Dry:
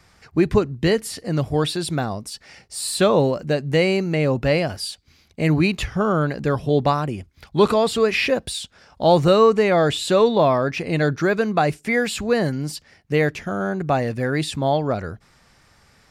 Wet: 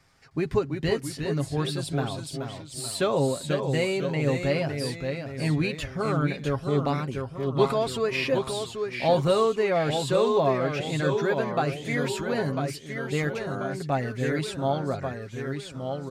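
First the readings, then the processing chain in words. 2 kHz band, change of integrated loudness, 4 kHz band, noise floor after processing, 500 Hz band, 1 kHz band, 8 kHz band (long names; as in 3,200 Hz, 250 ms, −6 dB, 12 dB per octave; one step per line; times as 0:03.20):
−6.5 dB, −6.5 dB, −6.5 dB, −42 dBFS, −6.0 dB, −6.5 dB, −6.5 dB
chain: delay with pitch and tempo change per echo 310 ms, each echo −1 semitone, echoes 3, each echo −6 dB
comb filter 7.4 ms, depth 48%
level −8.5 dB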